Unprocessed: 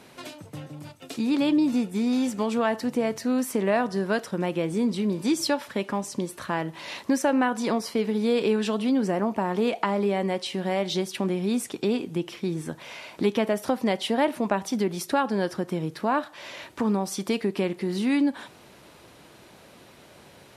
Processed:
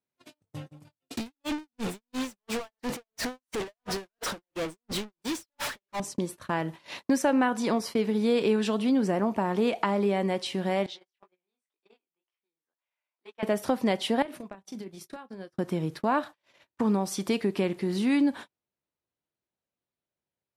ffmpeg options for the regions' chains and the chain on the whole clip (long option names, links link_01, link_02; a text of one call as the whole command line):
ffmpeg -i in.wav -filter_complex "[0:a]asettb=1/sr,asplit=3[link_01][link_02][link_03];[link_01]atrim=end=1.174[link_04];[link_02]atrim=start=1.17:end=6,asetpts=PTS-STARTPTS,afade=type=in:duration=0.004:curve=qsin,afade=type=out:start_time=4.826:duration=0.004:curve=qsin,acompressor=threshold=-32dB:ratio=5:attack=3.2:release=140:knee=1:detection=peak,asplit=2[link_05][link_06];[link_06]highpass=frequency=720:poles=1,volume=36dB,asoftclip=type=tanh:threshold=-21.5dB[link_07];[link_05][link_07]amix=inputs=2:normalize=0,lowpass=frequency=7700:poles=1,volume=-6dB,aeval=exprs='val(0)*pow(10,-27*(0.5-0.5*cos(2*PI*2.9*n/s))/20)':channel_layout=same[link_08];[link_03]atrim=start=5.996[link_09];[link_04][link_08]acrossfade=duration=0.004:curve1=hsin:curve2=qsin[link_10];[link_10][link_09]acrossfade=duration=0.004:curve1=qsin:curve2=hsin,asettb=1/sr,asplit=3[link_11][link_12][link_13];[link_11]atrim=end=10.864[link_14];[link_12]atrim=start=10.86:end=13.43,asetpts=PTS-STARTPTS,afade=type=in:duration=0.004:curve=qsin,afade=type=out:start_time=2.566:duration=0.004:curve=qsin,highpass=840,aemphasis=mode=reproduction:type=75kf,flanger=delay=16:depth=7.8:speed=2[link_15];[link_13]atrim=start=13.426[link_16];[link_14][link_15]acrossfade=duration=0.004:curve1=hsin:curve2=qsin[link_17];[link_17][link_16]acrossfade=duration=0.004:curve1=qsin:curve2=hsin,asettb=1/sr,asplit=3[link_18][link_19][link_20];[link_18]atrim=end=14.224[link_21];[link_19]atrim=start=14.22:end=15.56,asetpts=PTS-STARTPTS,afade=type=in:duration=0.004:curve=qsin,afade=type=out:start_time=1.336:duration=0.004:curve=qsin,bandreject=frequency=900:width=9.8,acompressor=threshold=-33dB:ratio=16:attack=3.2:release=140:knee=1:detection=peak,asplit=2[link_22][link_23];[link_23]adelay=31,volume=-11dB[link_24];[link_22][link_24]amix=inputs=2:normalize=0,atrim=end_sample=59094[link_25];[link_20]atrim=start=15.556[link_26];[link_21][link_25]acrossfade=duration=0.004:curve1=hsin:curve2=qsin[link_27];[link_27][link_26]acrossfade=duration=0.004:curve1=qsin:curve2=hsin,lowshelf=frequency=80:gain=6.5,agate=range=-42dB:threshold=-36dB:ratio=16:detection=peak,volume=-1.5dB" out.wav